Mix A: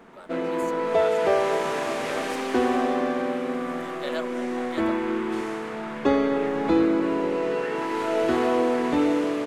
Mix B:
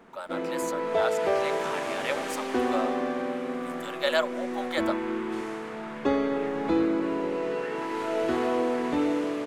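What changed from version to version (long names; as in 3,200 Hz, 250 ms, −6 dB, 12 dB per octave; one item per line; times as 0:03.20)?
speech +8.5 dB
background −4.0 dB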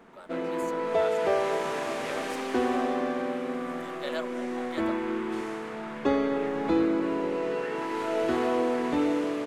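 speech −10.5 dB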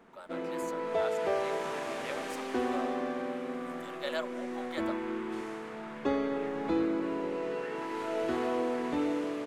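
background −5.0 dB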